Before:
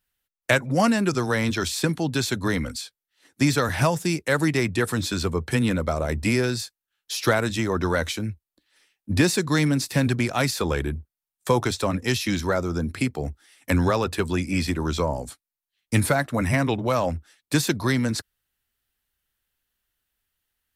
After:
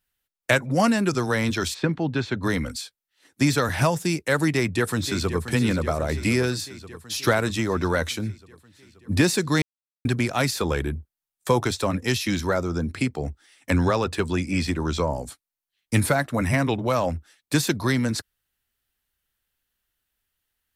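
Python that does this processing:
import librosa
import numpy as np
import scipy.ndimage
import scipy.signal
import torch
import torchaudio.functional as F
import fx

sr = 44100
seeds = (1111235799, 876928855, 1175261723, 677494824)

y = fx.lowpass(x, sr, hz=2600.0, slope=12, at=(1.73, 2.42), fade=0.02)
y = fx.echo_throw(y, sr, start_s=4.52, length_s=0.94, ms=530, feedback_pct=70, wet_db=-11.0)
y = fx.peak_eq(y, sr, hz=12000.0, db=-11.0, octaves=0.34, at=(12.63, 15.1))
y = fx.edit(y, sr, fx.silence(start_s=9.62, length_s=0.43), tone=tone)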